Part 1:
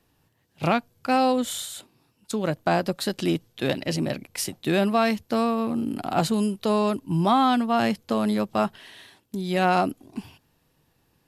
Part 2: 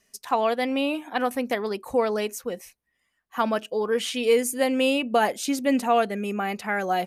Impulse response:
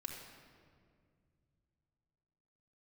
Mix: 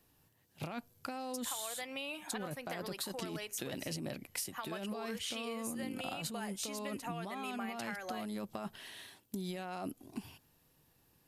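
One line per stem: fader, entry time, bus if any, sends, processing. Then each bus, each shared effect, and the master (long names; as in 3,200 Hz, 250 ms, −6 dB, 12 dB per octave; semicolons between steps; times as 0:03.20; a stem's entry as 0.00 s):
−9.0 dB, 0.00 s, no send, compressor whose output falls as the input rises −27 dBFS, ratio −1; high-shelf EQ 8,200 Hz +10.5 dB
−1.0 dB, 1.20 s, send −23 dB, downward compressor, threshold −27 dBFS, peak gain reduction 11.5 dB; high-pass filter 1,500 Hz 6 dB per octave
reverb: on, RT60 2.1 s, pre-delay 3 ms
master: downward compressor 6 to 1, threshold −37 dBFS, peak gain reduction 11.5 dB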